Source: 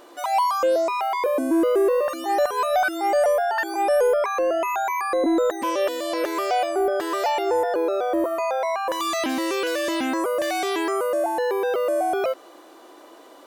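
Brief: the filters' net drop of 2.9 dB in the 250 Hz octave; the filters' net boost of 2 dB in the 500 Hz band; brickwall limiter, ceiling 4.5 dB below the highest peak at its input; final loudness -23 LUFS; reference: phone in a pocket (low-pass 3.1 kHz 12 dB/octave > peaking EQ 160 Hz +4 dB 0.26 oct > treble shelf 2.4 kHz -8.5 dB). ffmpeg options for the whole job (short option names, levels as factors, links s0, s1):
-af "equalizer=f=250:t=o:g=-7.5,equalizer=f=500:t=o:g=4.5,alimiter=limit=0.188:level=0:latency=1,lowpass=3100,equalizer=f=160:t=o:w=0.26:g=4,highshelf=f=2400:g=-8.5"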